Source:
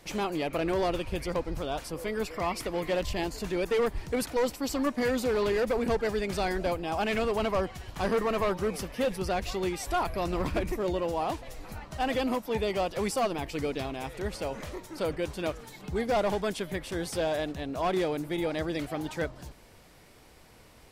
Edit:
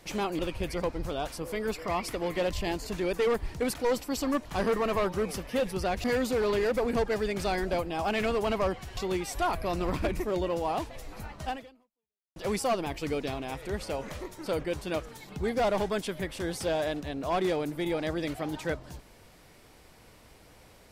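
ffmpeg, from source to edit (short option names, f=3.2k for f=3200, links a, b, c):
-filter_complex "[0:a]asplit=6[a][b][c][d][e][f];[a]atrim=end=0.392[g];[b]atrim=start=0.908:end=4.972[h];[c]atrim=start=7.898:end=9.492[i];[d]atrim=start=4.968:end=7.902[j];[e]atrim=start=9.488:end=12.88,asetpts=PTS-STARTPTS,afade=t=out:st=2.502:d=0.89:c=exp[k];[f]atrim=start=12.88,asetpts=PTS-STARTPTS,afade=t=in:d=0.004:c=hsin[l];[g][h]acrossfade=d=0.004:c1=hsin:c2=hsin[m];[m][i]acrossfade=d=0.004:c1=hsin:c2=hsin[n];[n][j]acrossfade=d=0.004:c1=hsin:c2=hsin[o];[k][l]concat=n=2:v=0:a=1[p];[o][p]acrossfade=d=0.004:c1=hsin:c2=hsin"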